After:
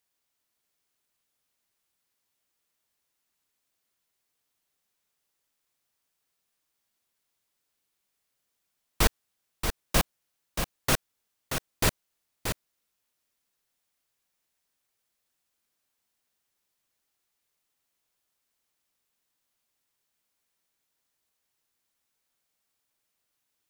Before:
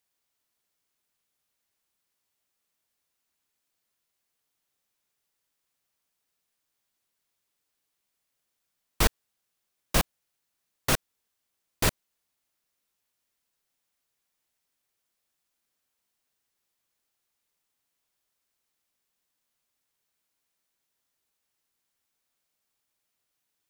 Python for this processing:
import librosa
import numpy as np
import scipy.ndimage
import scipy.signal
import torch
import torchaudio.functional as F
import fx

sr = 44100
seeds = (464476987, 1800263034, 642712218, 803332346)

y = x + 10.0 ** (-7.0 / 20.0) * np.pad(x, (int(630 * sr / 1000.0), 0))[:len(x)]